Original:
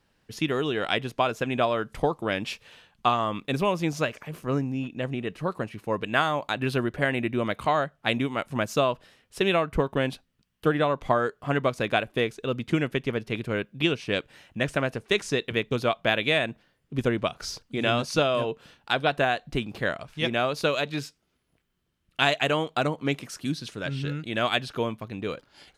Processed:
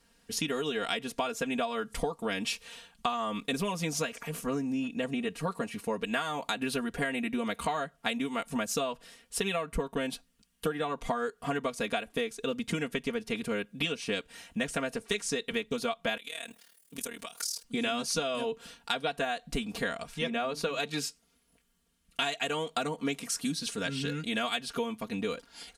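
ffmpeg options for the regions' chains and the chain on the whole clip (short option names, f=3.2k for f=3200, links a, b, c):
-filter_complex "[0:a]asettb=1/sr,asplit=3[a][b][c];[a]atrim=end=16.174[d];[b]atrim=start=16.17:end=17.64,asetpts=PTS-STARTPTS,afade=t=in:d=0.004:c=qsin,afade=t=out:st=1.466:d=0.004:c=qsin,aemphasis=mode=production:type=riaa,acompressor=threshold=-36dB:ratio=5:attack=3.2:release=140:knee=1:detection=peak,tremolo=f=38:d=0.857[e];[c]atrim=start=17.636[f];[d][e]acrossfade=d=0.004:c1=hsin:c2=qsin[g];[g][f]acrossfade=d=0.004:c1=qsin:c2=hsin,asettb=1/sr,asplit=3[h][i][j];[h]atrim=end=20.184[k];[i]atrim=start=20.18:end=20.8,asetpts=PTS-STARTPTS,afade=t=in:d=0.004:c=qsin,afade=t=out:st=0.616:d=0.004:c=qsin,equalizer=f=11k:t=o:w=2.7:g=-10,bandreject=f=50:t=h:w=6,bandreject=f=100:t=h:w=6,bandreject=f=150:t=h:w=6,bandreject=f=200:t=h:w=6,bandreject=f=250:t=h:w=6,bandreject=f=300:t=h:w=6[l];[j]atrim=start=20.796[m];[k][l]acrossfade=d=0.004:c1=hsin:c2=qsin[n];[n][m]acrossfade=d=0.004:c1=qsin:c2=hsin,equalizer=f=9k:w=0.63:g=11.5,aecho=1:1:4.3:0.95,acompressor=threshold=-27dB:ratio=6,volume=-1.5dB"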